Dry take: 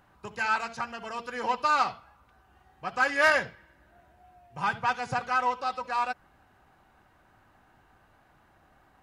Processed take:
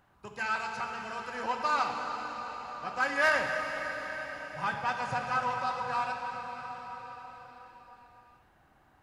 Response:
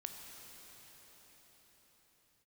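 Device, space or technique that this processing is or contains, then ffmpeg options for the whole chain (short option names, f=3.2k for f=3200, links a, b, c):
cathedral: -filter_complex "[1:a]atrim=start_sample=2205[a];[0:a][a]afir=irnorm=-1:irlink=0"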